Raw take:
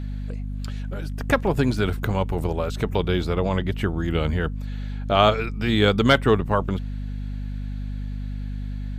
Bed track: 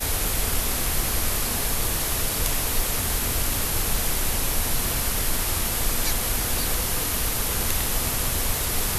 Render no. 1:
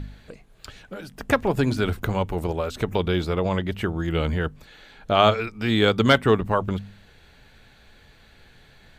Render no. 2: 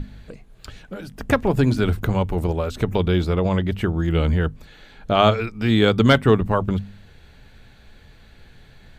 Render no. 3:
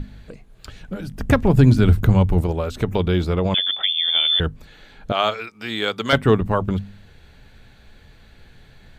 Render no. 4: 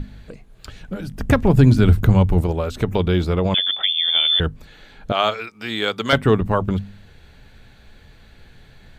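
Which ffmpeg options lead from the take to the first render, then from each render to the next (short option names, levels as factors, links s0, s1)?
-af "bandreject=f=50:t=h:w=4,bandreject=f=100:t=h:w=4,bandreject=f=150:t=h:w=4,bandreject=f=200:t=h:w=4,bandreject=f=250:t=h:w=4"
-af "lowshelf=f=270:g=7.5,bandreject=f=50:t=h:w=6,bandreject=f=100:t=h:w=6,bandreject=f=150:t=h:w=6"
-filter_complex "[0:a]asettb=1/sr,asplit=3[s0][s1][s2];[s0]atrim=end=0.814[s3];[s1]atrim=start=0.81:end=2.41,asetpts=PTS-STARTPTS,afade=t=in:d=0.004:c=qsin,afade=t=out:st=1.596:d=0.004:c=qsin,bass=f=250:g=8,treble=f=4000:g=1[s4];[s2]atrim=start=2.406[s5];[s3][s4]acrossfade=d=0.004:c1=hsin:c2=qsin[s6];[s6][s5]acrossfade=d=0.004:c1=qsin:c2=hsin,asettb=1/sr,asplit=3[s7][s8][s9];[s7]atrim=end=3.544[s10];[s8]atrim=start=3.54:end=4.4,asetpts=PTS-STARTPTS,afade=t=in:d=0.004:c=qsin,afade=t=out:st=0.856:d=0.004:c=qsin,lowpass=f=3100:t=q:w=0.5098,lowpass=f=3100:t=q:w=0.6013,lowpass=f=3100:t=q:w=0.9,lowpass=f=3100:t=q:w=2.563,afreqshift=-3600[s11];[s9]atrim=start=4.396[s12];[s10][s11]acrossfade=d=0.004:c1=hsin:c2=qsin[s13];[s13][s12]acrossfade=d=0.004:c1=qsin:c2=hsin,asettb=1/sr,asplit=3[s14][s15][s16];[s14]atrim=end=5.124[s17];[s15]atrim=start=5.12:end=6.13,asetpts=PTS-STARTPTS,afade=t=in:d=0.004:c=qsin,afade=t=out:st=1.006:d=0.004:c=qsin,highpass=f=1000:p=1[s18];[s16]atrim=start=6.126[s19];[s17][s18]acrossfade=d=0.004:c1=hsin:c2=qsin[s20];[s20][s19]acrossfade=d=0.004:c1=qsin:c2=hsin"
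-af "volume=1.12,alimiter=limit=0.708:level=0:latency=1"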